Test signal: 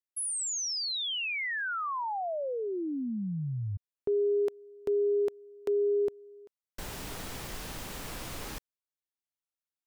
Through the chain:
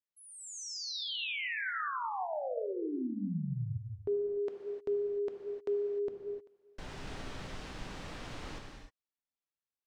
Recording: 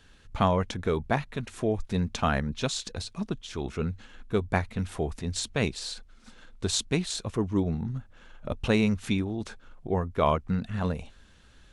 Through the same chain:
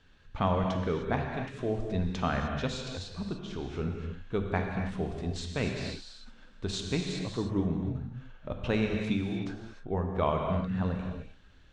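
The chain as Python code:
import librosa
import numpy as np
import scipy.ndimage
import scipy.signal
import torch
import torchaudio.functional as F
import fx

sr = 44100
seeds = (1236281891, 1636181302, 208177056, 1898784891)

y = fx.air_absorb(x, sr, metres=110.0)
y = fx.rev_gated(y, sr, seeds[0], gate_ms=330, shape='flat', drr_db=2.0)
y = F.gain(torch.from_numpy(y), -4.5).numpy()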